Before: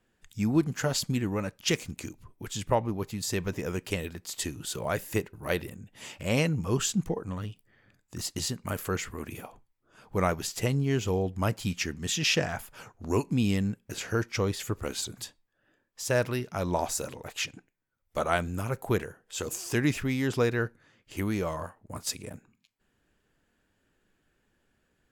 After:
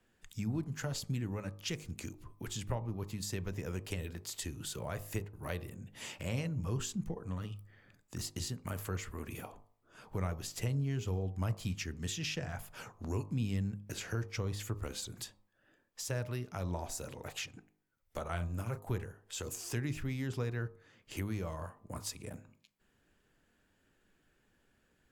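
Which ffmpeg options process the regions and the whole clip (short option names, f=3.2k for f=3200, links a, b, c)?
-filter_complex "[0:a]asettb=1/sr,asplit=3[a][b][c];[a]atrim=end=18.284[d];[b]atrim=start=18.28:end=18.87,asetpts=PTS-STARTPTS,afade=t=in:d=0.004:c=qsin,afade=t=out:st=0.586:d=0.004:c=qsin,asplit=2[e][f];[f]adelay=35,volume=-9dB[g];[e][g]amix=inputs=2:normalize=0,atrim=end_sample=26019,agate=range=-9dB:threshold=-33dB:ratio=16:release=100:detection=peak[h];[c]atrim=start=18.866[i];[d][h]acrossfade=d=0.004:c1=hsin:c2=qsin[j];[j][i]acrossfade=d=0.004:c1=qsin:c2=hsin,acrossover=split=120[k][l];[l]acompressor=threshold=-41dB:ratio=3[m];[k][m]amix=inputs=2:normalize=0,bandreject=f=51.05:t=h:w=4,bandreject=f=102.1:t=h:w=4,bandreject=f=153.15:t=h:w=4,bandreject=f=204.2:t=h:w=4,bandreject=f=255.25:t=h:w=4,bandreject=f=306.3:t=h:w=4,bandreject=f=357.35:t=h:w=4,bandreject=f=408.4:t=h:w=4,bandreject=f=459.45:t=h:w=4,bandreject=f=510.5:t=h:w=4,bandreject=f=561.55:t=h:w=4,bandreject=f=612.6:t=h:w=4,bandreject=f=663.65:t=h:w=4,bandreject=f=714.7:t=h:w=4,bandreject=f=765.75:t=h:w=4,bandreject=f=816.8:t=h:w=4,bandreject=f=867.85:t=h:w=4,bandreject=f=918.9:t=h:w=4,bandreject=f=969.95:t=h:w=4,bandreject=f=1.021k:t=h:w=4,bandreject=f=1.07205k:t=h:w=4,bandreject=f=1.1231k:t=h:w=4,bandreject=f=1.17415k:t=h:w=4,bandreject=f=1.2252k:t=h:w=4,bandreject=f=1.27625k:t=h:w=4"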